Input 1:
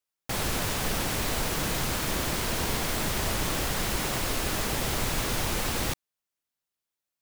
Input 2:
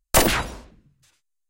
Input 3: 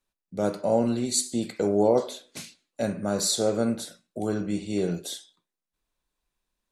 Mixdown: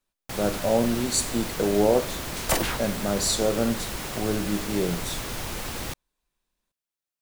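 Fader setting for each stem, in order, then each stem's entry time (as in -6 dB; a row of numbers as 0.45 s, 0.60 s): -4.0 dB, -7.5 dB, +0.5 dB; 0.00 s, 2.35 s, 0.00 s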